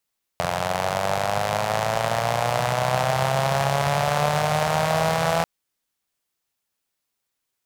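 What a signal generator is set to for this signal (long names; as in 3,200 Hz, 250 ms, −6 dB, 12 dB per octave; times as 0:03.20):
pulse-train model of a four-cylinder engine, changing speed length 5.04 s, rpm 2,600, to 5,000, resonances 140/660 Hz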